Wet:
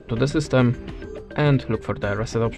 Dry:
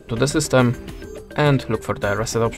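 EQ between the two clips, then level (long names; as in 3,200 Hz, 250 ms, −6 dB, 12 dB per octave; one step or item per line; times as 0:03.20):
Bessel low-pass filter 3,200 Hz, order 2
dynamic equaliser 910 Hz, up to −6 dB, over −30 dBFS, Q 0.71
0.0 dB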